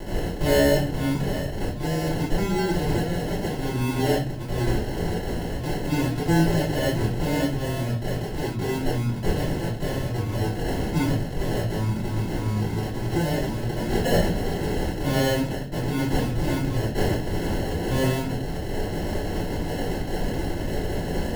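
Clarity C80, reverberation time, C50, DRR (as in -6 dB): 10.0 dB, 0.45 s, 5.0 dB, -11.5 dB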